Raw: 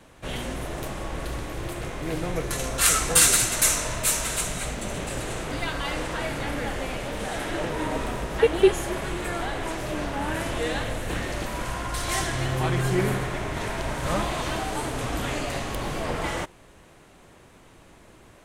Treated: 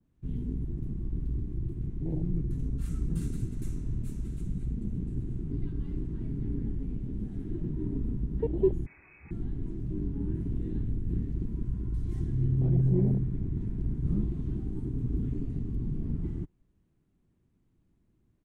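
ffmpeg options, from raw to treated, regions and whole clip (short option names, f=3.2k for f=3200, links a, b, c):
-filter_complex "[0:a]asettb=1/sr,asplit=3[a][b][c];[a]atrim=end=8.864[d];[b]atrim=start=8.86:end=9.31,asetpts=PTS-STARTPTS,afade=t=in:d=0.004:c=qsin,afade=t=out:st=0.446:d=0.004:c=qsin,lowpass=f=2.2k:t=q:w=0.5098,lowpass=f=2.2k:t=q:w=0.6013,lowpass=f=2.2k:t=q:w=0.9,lowpass=f=2.2k:t=q:w=2.563,afreqshift=-2600,acontrast=77[e];[c]atrim=start=9.306[f];[d][e]acrossfade=d=0.004:c1=hsin:c2=qsin[g];[g][f]acrossfade=d=0.004:c1=qsin:c2=hsin,firequalizer=gain_entry='entry(200,0);entry(350,-7);entry(530,-20)':delay=0.05:min_phase=1,afwtdn=0.0355,adynamicequalizer=threshold=0.00158:dfrequency=2000:dqfactor=0.7:tfrequency=2000:tqfactor=0.7:attack=5:release=100:ratio=0.375:range=1.5:mode=cutabove:tftype=highshelf,volume=2dB"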